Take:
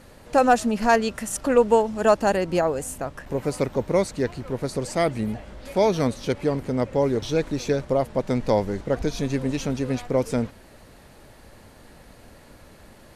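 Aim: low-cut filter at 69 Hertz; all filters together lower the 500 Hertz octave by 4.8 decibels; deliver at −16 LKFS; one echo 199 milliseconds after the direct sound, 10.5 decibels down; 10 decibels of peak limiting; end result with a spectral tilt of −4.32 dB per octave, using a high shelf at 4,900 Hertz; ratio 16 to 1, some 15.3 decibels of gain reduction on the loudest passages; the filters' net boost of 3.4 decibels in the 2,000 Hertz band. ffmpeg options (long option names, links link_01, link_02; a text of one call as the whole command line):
ffmpeg -i in.wav -af "highpass=69,equalizer=frequency=500:width_type=o:gain=-6,equalizer=frequency=2000:width_type=o:gain=4,highshelf=frequency=4900:gain=5.5,acompressor=threshold=-29dB:ratio=16,alimiter=level_in=4dB:limit=-24dB:level=0:latency=1,volume=-4dB,aecho=1:1:199:0.299,volume=22dB" out.wav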